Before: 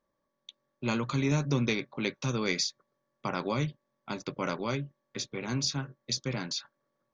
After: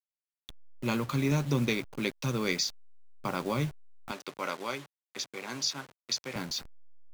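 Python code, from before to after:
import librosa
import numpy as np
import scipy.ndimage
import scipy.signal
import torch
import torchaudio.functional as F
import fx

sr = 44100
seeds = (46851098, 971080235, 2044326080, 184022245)

y = fx.delta_hold(x, sr, step_db=-40.0)
y = fx.weighting(y, sr, curve='A', at=(4.11, 6.36))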